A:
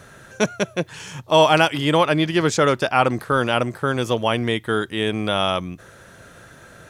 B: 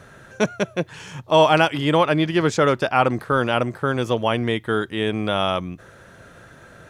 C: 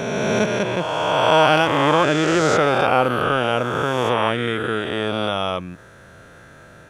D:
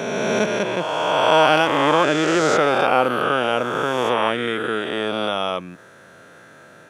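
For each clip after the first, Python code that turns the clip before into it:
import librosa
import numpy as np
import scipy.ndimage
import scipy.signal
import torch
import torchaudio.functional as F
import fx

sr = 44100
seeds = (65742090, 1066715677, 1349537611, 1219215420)

y1 = fx.high_shelf(x, sr, hz=4100.0, db=-7.5)
y2 = fx.spec_swells(y1, sr, rise_s=2.7)
y2 = y2 * 10.0 ** (-3.0 / 20.0)
y3 = scipy.signal.sosfilt(scipy.signal.butter(2, 190.0, 'highpass', fs=sr, output='sos'), y2)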